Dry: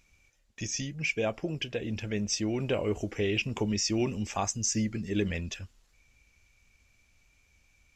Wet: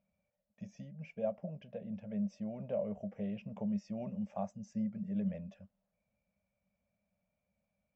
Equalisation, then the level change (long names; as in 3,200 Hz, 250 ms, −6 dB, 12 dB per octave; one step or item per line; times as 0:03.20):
pair of resonant band-passes 340 Hz, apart 1.6 octaves
+1.5 dB